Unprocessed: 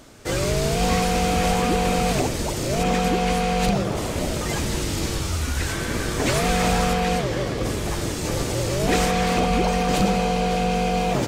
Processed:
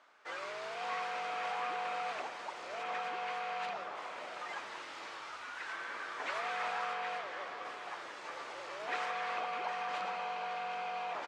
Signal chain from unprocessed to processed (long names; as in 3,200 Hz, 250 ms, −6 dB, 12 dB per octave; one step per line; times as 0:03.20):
four-pole ladder band-pass 1,400 Hz, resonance 25%
on a send: single-tap delay 766 ms −12 dB
on the sum: level +1 dB